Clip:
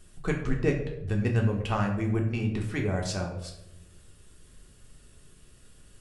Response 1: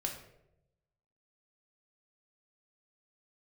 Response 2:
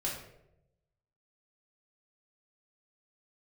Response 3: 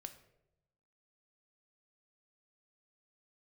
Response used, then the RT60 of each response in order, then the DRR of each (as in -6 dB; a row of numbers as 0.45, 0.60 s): 1; 0.85, 0.85, 0.90 s; 0.5, -5.5, 7.5 dB